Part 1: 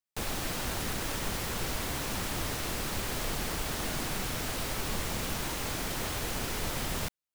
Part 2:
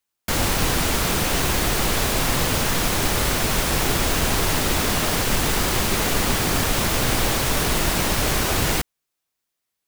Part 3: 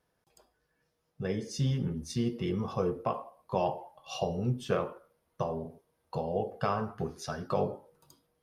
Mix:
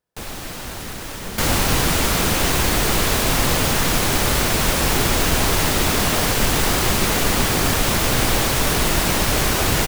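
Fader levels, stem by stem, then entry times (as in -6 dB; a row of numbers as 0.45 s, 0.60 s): +2.5 dB, +2.5 dB, -6.5 dB; 0.00 s, 1.10 s, 0.00 s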